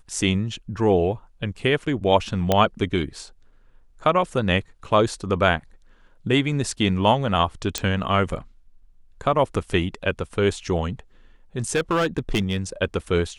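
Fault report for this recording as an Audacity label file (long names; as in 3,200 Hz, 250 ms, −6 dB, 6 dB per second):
2.520000	2.520000	click −5 dBFS
7.780000	7.780000	click −7 dBFS
11.750000	12.580000	clipping −16.5 dBFS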